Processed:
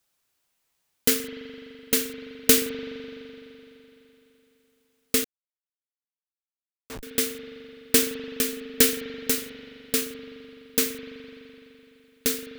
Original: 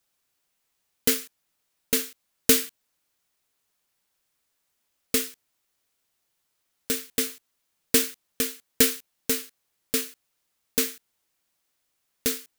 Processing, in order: spring tank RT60 3.4 s, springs 42 ms, chirp 55 ms, DRR 8 dB; 5.24–7.03 Schmitt trigger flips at -24 dBFS; gain +1 dB

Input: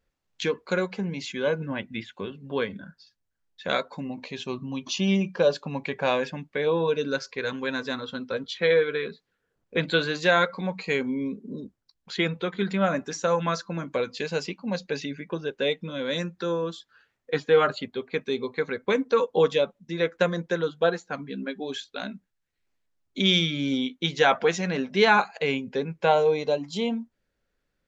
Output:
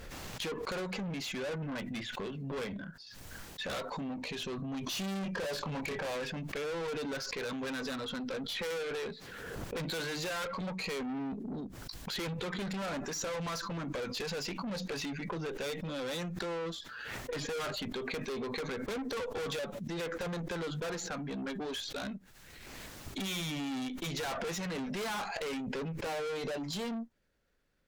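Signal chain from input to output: 4.89–6.07 doubler 26 ms -2 dB; tube stage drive 36 dB, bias 0.25; backwards sustainer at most 25 dB/s; gain +1 dB

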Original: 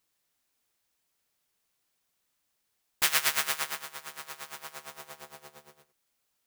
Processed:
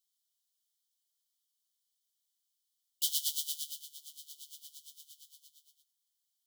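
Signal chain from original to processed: brick-wall FIR high-pass 2900 Hz; gain -4.5 dB

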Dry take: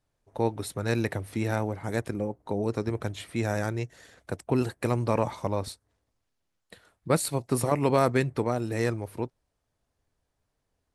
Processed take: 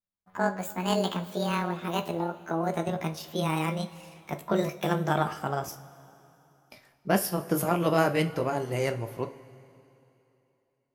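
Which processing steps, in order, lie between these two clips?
gliding pitch shift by +11 st ending unshifted; gate with hold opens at -58 dBFS; two-slope reverb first 0.29 s, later 3 s, from -18 dB, DRR 7 dB

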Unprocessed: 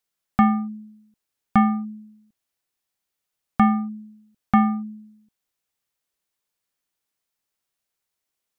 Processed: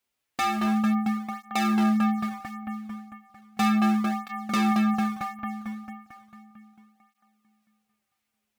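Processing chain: spectral whitening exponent 0.6; bell 2400 Hz +7 dB 0.86 oct; dark delay 0.224 s, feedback 63%, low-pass 1900 Hz, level -6 dB; in parallel at -10.5 dB: decimation with a swept rate 11×, swing 160% 1.8 Hz; on the sum: hard clip -21 dBFS, distortion -5 dB; tape flanging out of phase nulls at 0.35 Hz, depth 6.7 ms; gain +2 dB

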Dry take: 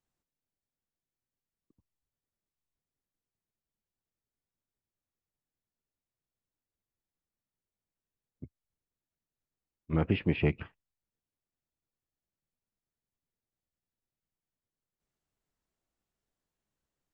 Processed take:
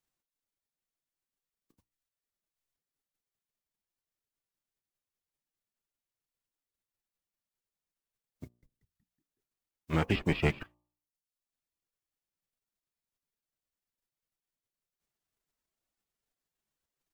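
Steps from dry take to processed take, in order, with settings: spectral whitening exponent 0.6; de-hum 59.52 Hz, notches 20; reverb removal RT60 0.75 s; 8.44–10.63 frequency-shifting echo 0.185 s, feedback 52%, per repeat -100 Hz, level -14.5 dB

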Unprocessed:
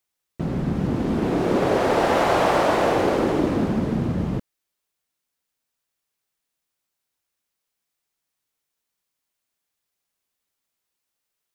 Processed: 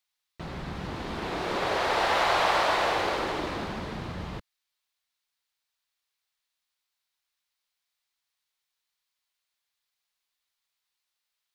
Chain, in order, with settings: ten-band EQ 125 Hz -6 dB, 250 Hz -10 dB, 500 Hz -3 dB, 1000 Hz +4 dB, 2000 Hz +4 dB, 4000 Hz +9 dB; gain -6 dB

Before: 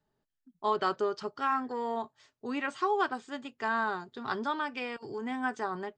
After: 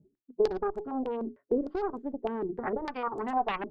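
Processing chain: reverse; upward compressor, threshold -37 dBFS; reverse; hard clip -25.5 dBFS, distortion -14 dB; low shelf 150 Hz -2 dB; notches 60/120/180/240/300/360/420 Hz; low-pass sweep 390 Hz -> 1100 Hz, 3.97–4.68; spectral noise reduction 16 dB; time stretch by phase-locked vocoder 0.62×; added harmonics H 4 -12 dB, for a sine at -17 dBFS; in parallel at -6 dB: wavefolder -25 dBFS; on the sum: compressor, threshold -31 dBFS, peak gain reduction 10 dB; stepped low-pass 6.6 Hz 290–7500 Hz; gain +1 dB

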